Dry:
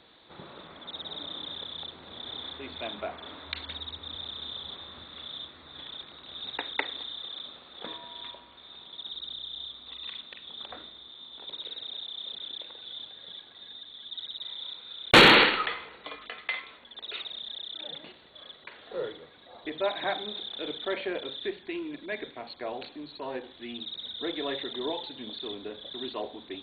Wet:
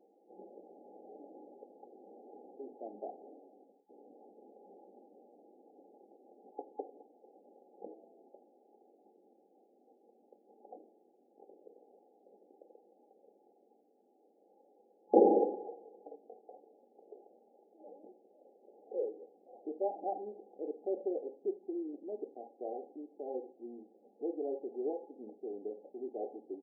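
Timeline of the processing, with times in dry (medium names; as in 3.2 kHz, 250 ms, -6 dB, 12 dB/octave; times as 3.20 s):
3.13–3.89 s: fade out equal-power
whole clip: FFT band-pass 190–850 Hz; comb 2.3 ms, depth 50%; trim -4.5 dB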